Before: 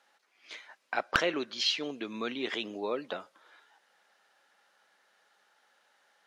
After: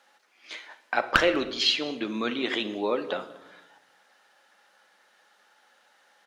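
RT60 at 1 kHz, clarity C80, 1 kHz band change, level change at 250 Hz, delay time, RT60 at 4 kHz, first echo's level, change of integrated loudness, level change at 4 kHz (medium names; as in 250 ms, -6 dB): 0.85 s, 15.5 dB, +6.0 dB, +7.0 dB, 197 ms, 0.60 s, -23.5 dB, +6.0 dB, +5.5 dB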